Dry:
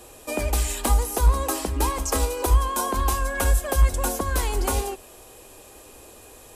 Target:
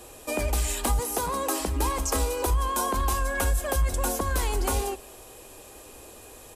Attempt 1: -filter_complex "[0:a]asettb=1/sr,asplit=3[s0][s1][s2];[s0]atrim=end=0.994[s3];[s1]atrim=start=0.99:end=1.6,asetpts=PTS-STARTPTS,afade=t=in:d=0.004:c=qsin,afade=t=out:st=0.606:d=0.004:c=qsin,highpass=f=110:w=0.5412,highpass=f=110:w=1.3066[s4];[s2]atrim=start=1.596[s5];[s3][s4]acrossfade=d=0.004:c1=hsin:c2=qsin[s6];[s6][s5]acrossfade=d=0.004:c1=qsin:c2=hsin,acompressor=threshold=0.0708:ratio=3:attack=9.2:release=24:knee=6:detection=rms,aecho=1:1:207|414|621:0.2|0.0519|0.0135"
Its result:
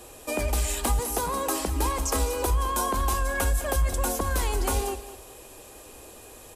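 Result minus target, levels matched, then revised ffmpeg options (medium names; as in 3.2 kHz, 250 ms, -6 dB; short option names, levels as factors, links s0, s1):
echo-to-direct +11.5 dB
-filter_complex "[0:a]asettb=1/sr,asplit=3[s0][s1][s2];[s0]atrim=end=0.994[s3];[s1]atrim=start=0.99:end=1.6,asetpts=PTS-STARTPTS,afade=t=in:d=0.004:c=qsin,afade=t=out:st=0.606:d=0.004:c=qsin,highpass=f=110:w=0.5412,highpass=f=110:w=1.3066[s4];[s2]atrim=start=1.596[s5];[s3][s4]acrossfade=d=0.004:c1=hsin:c2=qsin[s6];[s6][s5]acrossfade=d=0.004:c1=qsin:c2=hsin,acompressor=threshold=0.0708:ratio=3:attack=9.2:release=24:knee=6:detection=rms,aecho=1:1:207|414:0.0531|0.0138"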